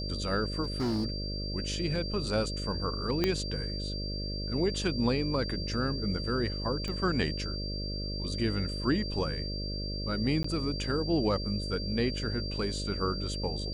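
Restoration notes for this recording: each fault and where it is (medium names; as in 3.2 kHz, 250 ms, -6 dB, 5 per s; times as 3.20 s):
buzz 50 Hz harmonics 12 -36 dBFS
whine 4.7 kHz -38 dBFS
0.63–1.06 s: clipped -26.5 dBFS
3.24 s: pop -13 dBFS
6.88 s: pop -23 dBFS
10.43–10.44 s: dropout 14 ms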